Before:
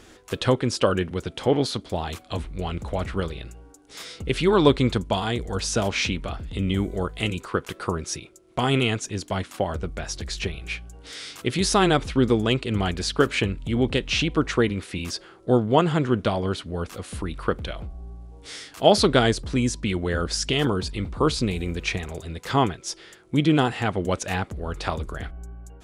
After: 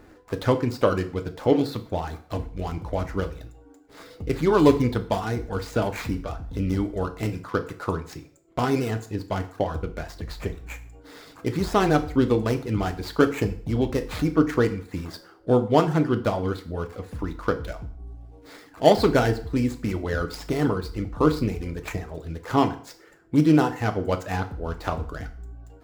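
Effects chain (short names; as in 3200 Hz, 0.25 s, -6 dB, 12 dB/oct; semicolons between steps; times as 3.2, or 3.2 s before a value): median filter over 15 samples; reverb removal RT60 0.58 s; FDN reverb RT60 0.51 s, low-frequency decay 0.9×, high-frequency decay 0.9×, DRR 6.5 dB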